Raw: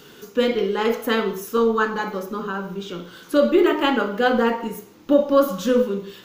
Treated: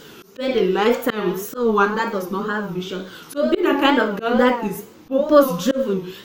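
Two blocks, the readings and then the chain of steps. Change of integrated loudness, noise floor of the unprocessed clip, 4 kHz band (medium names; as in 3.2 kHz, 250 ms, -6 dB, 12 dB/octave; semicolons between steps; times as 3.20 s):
+1.5 dB, -47 dBFS, +1.5 dB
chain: wow and flutter 140 cents; slow attack 183 ms; trim +4 dB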